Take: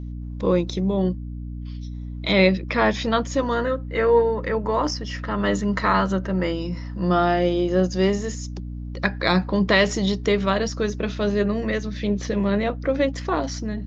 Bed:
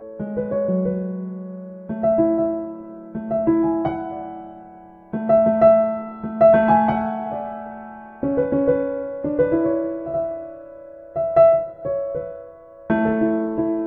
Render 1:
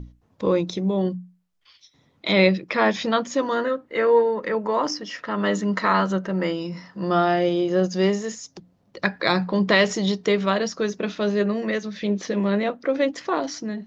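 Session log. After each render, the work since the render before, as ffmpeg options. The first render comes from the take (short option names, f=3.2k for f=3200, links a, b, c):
-af "bandreject=f=60:t=h:w=6,bandreject=f=120:t=h:w=6,bandreject=f=180:t=h:w=6,bandreject=f=240:t=h:w=6,bandreject=f=300:t=h:w=6"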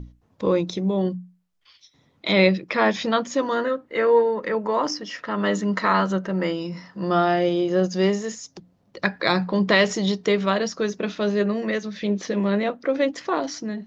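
-af anull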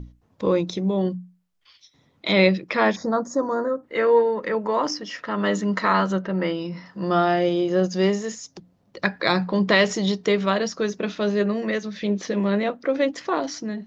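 -filter_complex "[0:a]asplit=3[a][b][c];[a]afade=t=out:st=2.95:d=0.02[d];[b]asuperstop=centerf=2800:order=4:qfactor=0.57,afade=t=in:st=2.95:d=0.02,afade=t=out:st=3.82:d=0.02[e];[c]afade=t=in:st=3.82:d=0.02[f];[d][e][f]amix=inputs=3:normalize=0,asettb=1/sr,asplit=3[g][h][i];[g]atrim=end=6.224[j];[h]atrim=start=6.22:end=6.86,asetpts=PTS-STARTPTS,afade=t=in:d=0.004:c=qsin,afade=t=out:st=0.636:d=0.004:c=qsin,lowpass=f=4.9k:w=0.5412,lowpass=f=4.9k:w=1.3066[k];[i]atrim=start=6.856[l];[j][k]acrossfade=d=0.004:c1=hsin:c2=qsin[m];[m][l]acrossfade=d=0.004:c1=qsin:c2=hsin"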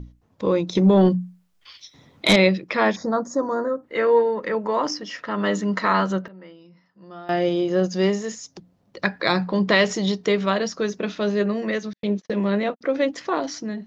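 -filter_complex "[0:a]asettb=1/sr,asplit=3[a][b][c];[a]atrim=end=0.754[d];[b]atrim=start=0.75:end=2.36,asetpts=PTS-STARTPTS,afade=t=in:d=0.004:c=qsin,afade=t=out:st=1.606:d=0.004:c=qsin,aeval=exprs='0.355*sin(PI/2*1.78*val(0)/0.355)':c=same[e];[c]atrim=start=2.356[f];[d][e]acrossfade=d=0.004:c1=hsin:c2=qsin[g];[g][f]acrossfade=d=0.004:c1=qsin:c2=hsin,asettb=1/sr,asplit=3[h][i][j];[h]atrim=end=11.934[k];[i]atrim=start=11.93:end=12.81,asetpts=PTS-STARTPTS,afade=t=in:d=0.004:c=qsin,afade=t=out:st=0.876:d=0.004:c=qsin,agate=range=-52dB:threshold=-32dB:ratio=16:release=100:detection=peak[l];[j]atrim=start=12.806[m];[k][l]acrossfade=d=0.004:c1=hsin:c2=qsin[n];[n][m]acrossfade=d=0.004:c1=qsin:c2=hsin,asplit=3[o][p][q];[o]atrim=end=6.28,asetpts=PTS-STARTPTS,afade=t=out:st=6.08:d=0.2:c=log:silence=0.105925[r];[p]atrim=start=6.28:end=7.29,asetpts=PTS-STARTPTS,volume=-19.5dB[s];[q]atrim=start=7.29,asetpts=PTS-STARTPTS,afade=t=in:d=0.2:c=log:silence=0.105925[t];[r][s][t]concat=n=3:v=0:a=1"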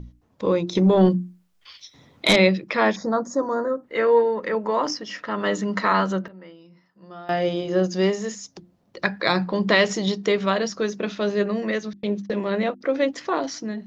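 -af "bandreject=f=50:t=h:w=6,bandreject=f=100:t=h:w=6,bandreject=f=150:t=h:w=6,bandreject=f=200:t=h:w=6,bandreject=f=250:t=h:w=6,bandreject=f=300:t=h:w=6,bandreject=f=350:t=h:w=6"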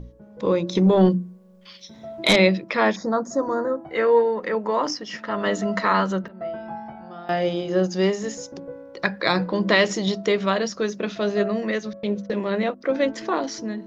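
-filter_complex "[1:a]volume=-19dB[a];[0:a][a]amix=inputs=2:normalize=0"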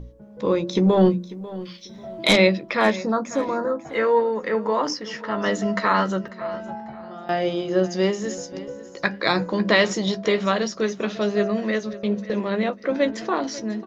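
-filter_complex "[0:a]asplit=2[a][b];[b]adelay=14,volume=-11dB[c];[a][c]amix=inputs=2:normalize=0,aecho=1:1:544|1088|1632:0.141|0.0396|0.0111"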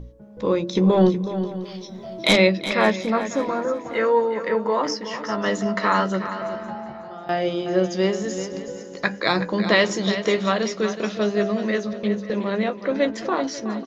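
-af "aecho=1:1:370|740|1110:0.282|0.0761|0.0205"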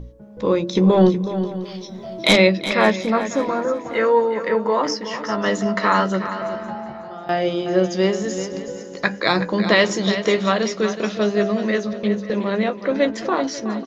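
-af "volume=2.5dB,alimiter=limit=-2dB:level=0:latency=1"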